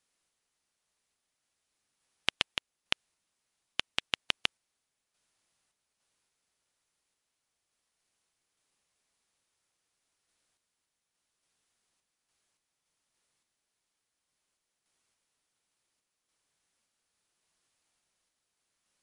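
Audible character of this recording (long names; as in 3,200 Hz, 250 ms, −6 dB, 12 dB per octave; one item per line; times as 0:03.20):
sample-and-hold tremolo
MP3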